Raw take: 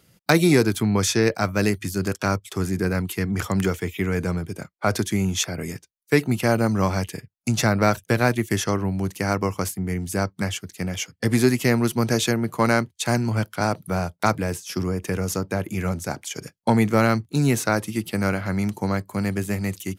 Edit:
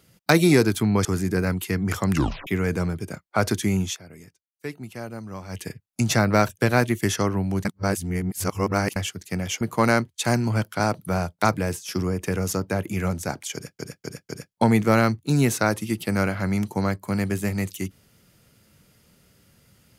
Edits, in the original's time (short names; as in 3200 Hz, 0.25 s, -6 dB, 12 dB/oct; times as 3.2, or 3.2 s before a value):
1.05–2.53 cut
3.6 tape stop 0.35 s
5.3–7.12 dip -15 dB, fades 0.15 s
9.13–10.44 reverse
11.09–12.42 cut
16.35–16.6 loop, 4 plays